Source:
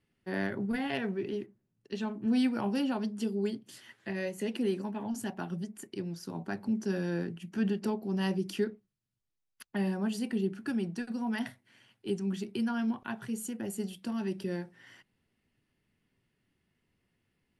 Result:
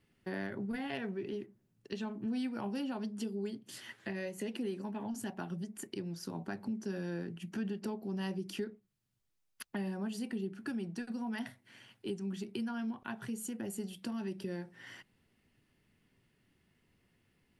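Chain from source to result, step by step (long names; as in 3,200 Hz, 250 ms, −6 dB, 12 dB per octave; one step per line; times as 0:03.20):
downward compressor 2.5 to 1, threshold −45 dBFS, peak gain reduction 13.5 dB
level +4.5 dB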